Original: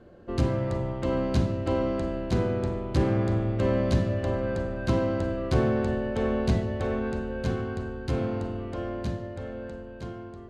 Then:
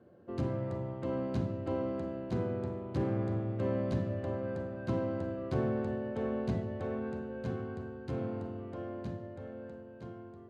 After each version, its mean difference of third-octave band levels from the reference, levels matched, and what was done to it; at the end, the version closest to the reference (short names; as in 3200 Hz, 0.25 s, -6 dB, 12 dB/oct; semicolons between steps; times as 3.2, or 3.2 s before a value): 2.5 dB: HPF 92 Hz 24 dB/oct; high shelf 2200 Hz -10.5 dB; gain -7 dB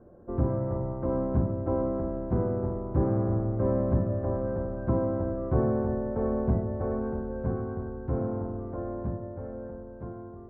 6.0 dB: LPF 1200 Hz 24 dB/oct; gain -1.5 dB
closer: first